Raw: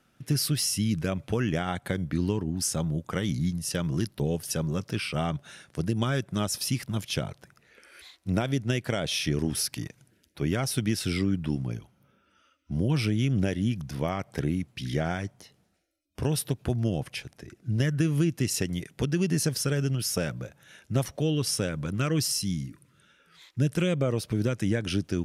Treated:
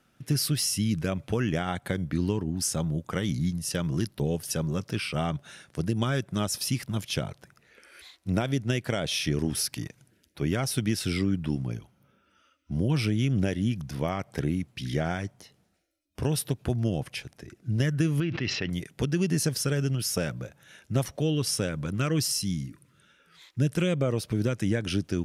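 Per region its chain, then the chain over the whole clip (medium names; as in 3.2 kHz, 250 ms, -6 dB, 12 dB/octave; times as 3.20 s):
18.20–18.70 s: Bessel low-pass 2.4 kHz, order 8 + tilt shelf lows -6 dB, about 930 Hz + decay stretcher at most 30 dB/s
whole clip: none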